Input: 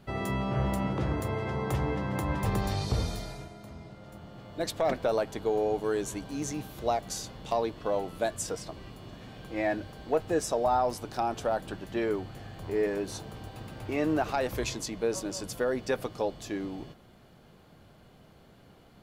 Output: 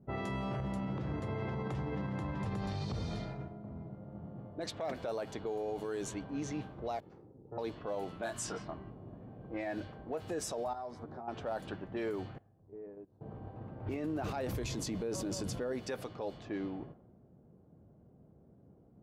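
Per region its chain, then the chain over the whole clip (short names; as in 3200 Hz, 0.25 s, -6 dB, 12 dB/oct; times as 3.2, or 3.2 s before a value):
0.6–4.48 bell 170 Hz +5.5 dB 1.6 oct + compressor 5:1, threshold -29 dBFS
7–7.58 minimum comb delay 2.3 ms + band-pass 230 Hz, Q 1.2
8.17–8.9 notch 500 Hz, Q 5 + dynamic EQ 1300 Hz, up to +5 dB, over -48 dBFS, Q 1.4 + doubler 26 ms -3 dB
10.73–11.28 bell 2700 Hz -12 dB 0.28 oct + compressor 8:1, threshold -38 dBFS + doubler 13 ms -5 dB
12.38–13.21 gate -32 dBFS, range -19 dB + compressor 3:1, threshold -47 dBFS
13.86–15.73 low shelf 420 Hz +9.5 dB + sustainer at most 64 dB/s
whole clip: low-pass opened by the level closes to 380 Hz, open at -26 dBFS; HPF 62 Hz; limiter -26.5 dBFS; gain -2.5 dB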